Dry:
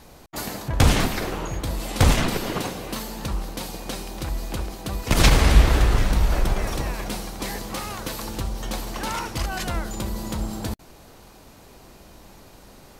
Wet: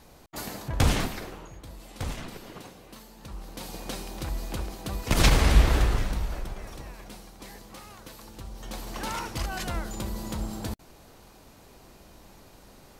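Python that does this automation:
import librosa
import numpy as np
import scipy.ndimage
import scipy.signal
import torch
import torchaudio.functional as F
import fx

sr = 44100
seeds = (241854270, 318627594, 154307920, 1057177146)

y = fx.gain(x, sr, db=fx.line((0.95, -5.5), (1.53, -16.5), (3.16, -16.5), (3.77, -4.0), (5.8, -4.0), (6.51, -14.5), (8.34, -14.5), (8.98, -4.5)))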